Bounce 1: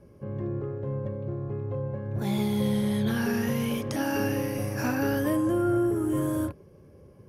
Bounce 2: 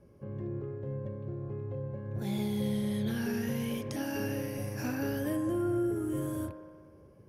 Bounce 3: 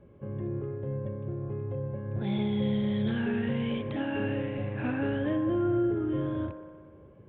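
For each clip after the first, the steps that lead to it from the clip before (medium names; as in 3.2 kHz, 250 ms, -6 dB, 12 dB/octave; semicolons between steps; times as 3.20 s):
dynamic bell 1.1 kHz, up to -7 dB, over -48 dBFS, Q 1.3; feedback echo behind a band-pass 61 ms, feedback 78%, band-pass 1 kHz, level -11 dB; trim -5.5 dB
resampled via 8 kHz; trim +3.5 dB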